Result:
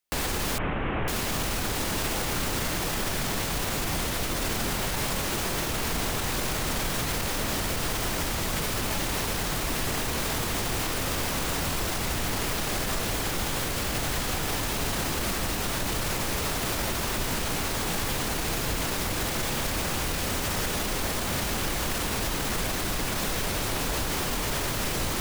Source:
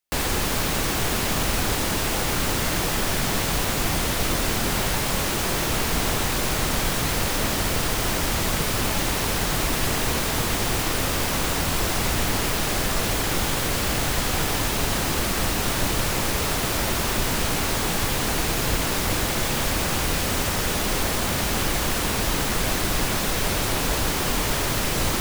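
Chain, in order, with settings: 0.58–1.08 CVSD 16 kbps; limiter -19 dBFS, peak gain reduction 9 dB

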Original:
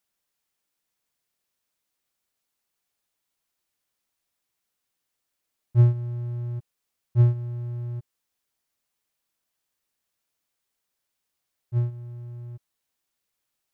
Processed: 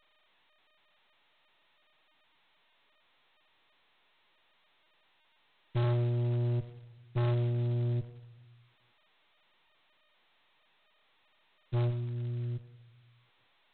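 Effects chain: Chebyshev band-pass 100–530 Hz, order 4; 5.84–7.93 dynamic EQ 380 Hz, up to +6 dB, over -37 dBFS, Q 0.71; tube stage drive 34 dB, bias 0.45; reverb RT60 0.95 s, pre-delay 65 ms, DRR 14 dB; gain +7 dB; G.726 16 kbps 8000 Hz

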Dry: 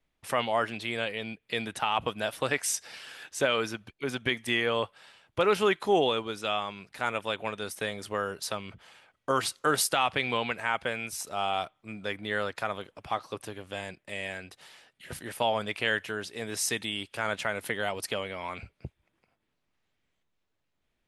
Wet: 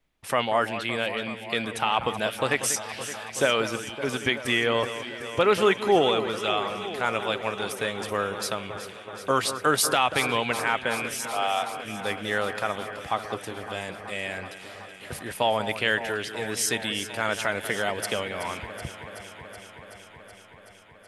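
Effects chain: 11.25–11.75 steep high-pass 440 Hz 72 dB/oct; on a send: echo with dull and thin repeats by turns 0.188 s, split 2100 Hz, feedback 87%, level -11 dB; on the sum: gain +3.5 dB

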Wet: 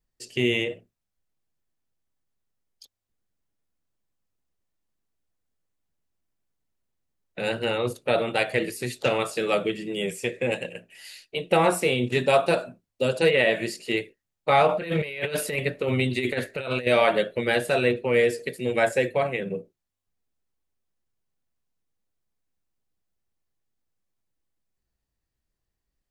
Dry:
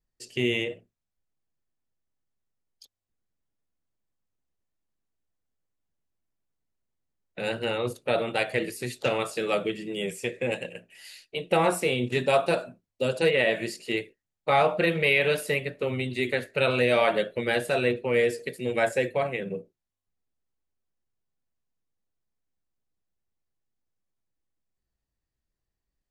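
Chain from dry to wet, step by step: 14.68–16.87 negative-ratio compressor -28 dBFS, ratio -0.5; gain +2.5 dB

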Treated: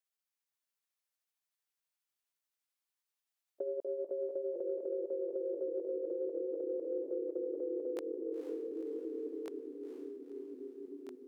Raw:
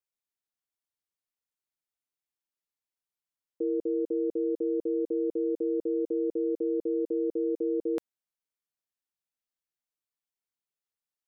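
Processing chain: gliding pitch shift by +4.5 st ending unshifted; echoes that change speed 0.513 s, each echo -2 st, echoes 3, each echo -6 dB; HPF 770 Hz 6 dB/oct; on a send: diffused feedback echo 0.482 s, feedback 52%, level -9 dB; on the sum: compressor 2.5:1, threshold -39 dBFS, peak gain reduction 6.5 dB; gain +3 dB

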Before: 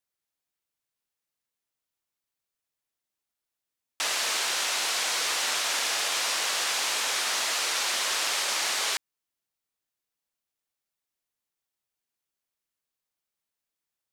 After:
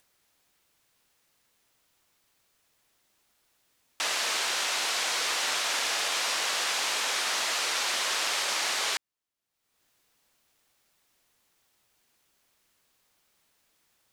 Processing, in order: upward compressor, threshold -51 dBFS; high shelf 7200 Hz -5 dB

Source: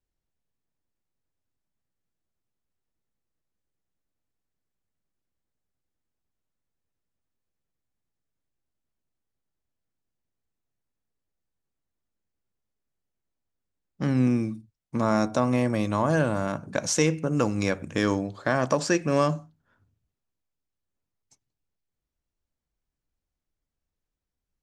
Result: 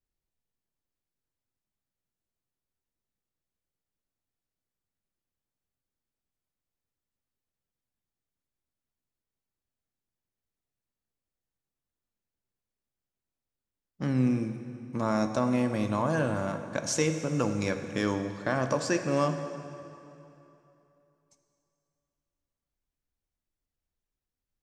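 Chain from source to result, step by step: plate-style reverb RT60 3 s, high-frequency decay 0.8×, DRR 7.5 dB; gain -4.5 dB

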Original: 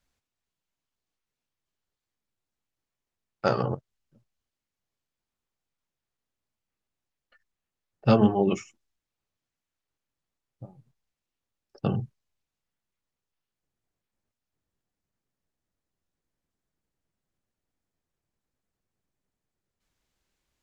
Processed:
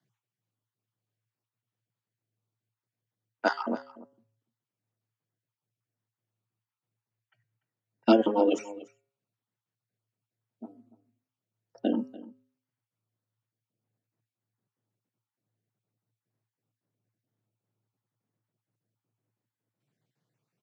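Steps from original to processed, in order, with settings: random spectral dropouts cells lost 30%; de-hum 146.9 Hz, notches 19; frequency shift +110 Hz; on a send: echo 0.292 s -18 dB; on the sum: mismatched tape noise reduction decoder only

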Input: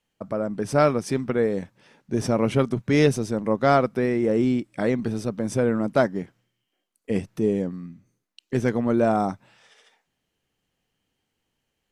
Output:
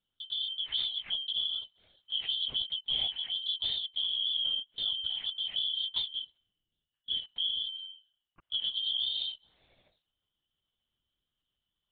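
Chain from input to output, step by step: four-band scrambler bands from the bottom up 3412; compressor 6:1, threshold -21 dBFS, peak gain reduction 8.5 dB; LPC vocoder at 8 kHz whisper; gain -7 dB

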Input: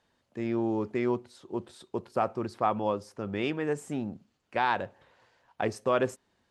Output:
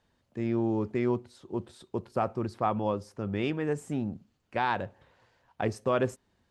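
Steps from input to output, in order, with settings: low shelf 180 Hz +10 dB; gain -2 dB

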